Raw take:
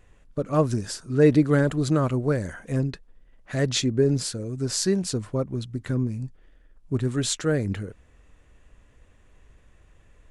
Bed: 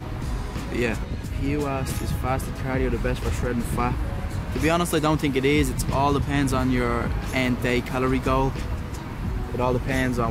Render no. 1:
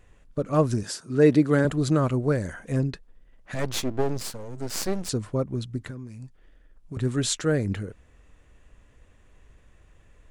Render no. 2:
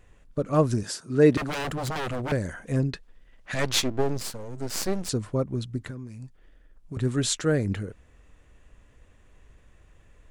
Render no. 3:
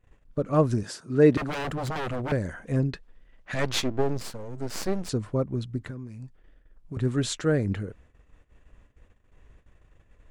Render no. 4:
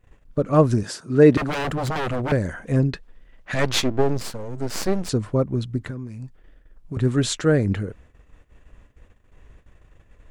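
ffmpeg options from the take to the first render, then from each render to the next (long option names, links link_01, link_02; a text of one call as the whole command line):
ffmpeg -i in.wav -filter_complex "[0:a]asettb=1/sr,asplit=3[link_01][link_02][link_03];[link_01]atrim=end=0.834[link_04];[link_02]atrim=start=0.83:end=1.65,asetpts=PTS-STARTPTS,afade=type=in:duration=0.004:curve=qsin,afade=type=out:start_time=0.816:duration=0.004:curve=qsin,highpass=140[link_05];[link_03]atrim=start=1.646[link_06];[link_04][link_05]acrossfade=duration=0.004:curve1=hsin:curve2=qsin[link_07];[link_07][link_06]acrossfade=duration=0.004:curve1=qsin:curve2=hsin,asettb=1/sr,asplit=3[link_08][link_09][link_10];[link_08]atrim=end=3.544[link_11];[link_09]atrim=start=3.54:end=5.09,asetpts=PTS-STARTPTS,afade=type=in:duration=0.004:curve=qsin,afade=type=out:start_time=1.546:duration=0.004:curve=qsin,aeval=exprs='max(val(0),0)':channel_layout=same[link_12];[link_10]atrim=start=5.086[link_13];[link_11][link_12]acrossfade=duration=0.004:curve1=hsin:curve2=qsin[link_14];[link_14][link_13]acrossfade=duration=0.004:curve1=qsin:curve2=hsin,asettb=1/sr,asplit=3[link_15][link_16][link_17];[link_15]atrim=end=5.874[link_18];[link_16]atrim=start=5.87:end=6.97,asetpts=PTS-STARTPTS,afade=type=in:duration=0.004:curve=qsin,afade=type=out:start_time=1.096:duration=0.004:curve=qsin,acrossover=split=680|1400[link_19][link_20][link_21];[link_19]acompressor=threshold=-38dB:ratio=4[link_22];[link_20]acompressor=threshold=-56dB:ratio=4[link_23];[link_21]acompressor=threshold=-56dB:ratio=4[link_24];[link_22][link_23][link_24]amix=inputs=3:normalize=0[link_25];[link_17]atrim=start=6.966[link_26];[link_18][link_25]acrossfade=duration=0.004:curve1=hsin:curve2=qsin[link_27];[link_27][link_26]acrossfade=duration=0.004:curve1=qsin:curve2=hsin" out.wav
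ffmpeg -i in.wav -filter_complex "[0:a]asettb=1/sr,asplit=3[link_01][link_02][link_03];[link_01]atrim=end=1.374[link_04];[link_02]atrim=start=1.37:end=2.32,asetpts=PTS-STARTPTS,afade=type=in:duration=0.004:curve=qsin,afade=type=out:start_time=0.946:duration=0.004:curve=qsin,aeval=exprs='0.0562*(abs(mod(val(0)/0.0562+3,4)-2)-1)':channel_layout=same[link_05];[link_03]atrim=start=2.316[link_06];[link_04][link_05]acrossfade=duration=0.004:curve1=hsin:curve2=qsin[link_07];[link_07][link_06]acrossfade=duration=0.004:curve1=qsin:curve2=hsin,asplit=3[link_08][link_09][link_10];[link_08]afade=type=out:start_time=2.93:duration=0.02[link_11];[link_09]equalizer=frequency=3400:width=0.35:gain=7.5,afade=type=in:start_time=2.93:duration=0.02,afade=type=out:start_time=3.86:duration=0.02[link_12];[link_10]afade=type=in:start_time=3.86:duration=0.02[link_13];[link_11][link_12][link_13]amix=inputs=3:normalize=0" out.wav
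ffmpeg -i in.wav -af "agate=range=-14dB:threshold=-53dB:ratio=16:detection=peak,highshelf=frequency=4000:gain=-8" out.wav
ffmpeg -i in.wav -af "volume=5.5dB,alimiter=limit=-2dB:level=0:latency=1" out.wav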